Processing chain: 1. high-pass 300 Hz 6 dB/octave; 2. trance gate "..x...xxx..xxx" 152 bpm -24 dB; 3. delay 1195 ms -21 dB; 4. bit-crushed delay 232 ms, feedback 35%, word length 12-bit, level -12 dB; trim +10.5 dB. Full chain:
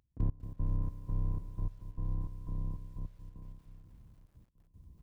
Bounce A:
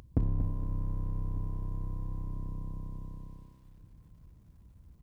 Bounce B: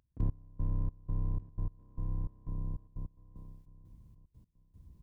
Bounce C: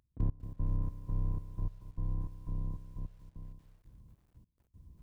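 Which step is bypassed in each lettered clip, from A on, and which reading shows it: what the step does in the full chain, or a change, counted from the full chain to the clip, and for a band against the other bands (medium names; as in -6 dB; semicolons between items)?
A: 2, 125 Hz band -2.0 dB; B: 4, momentary loudness spread change +2 LU; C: 3, momentary loudness spread change -4 LU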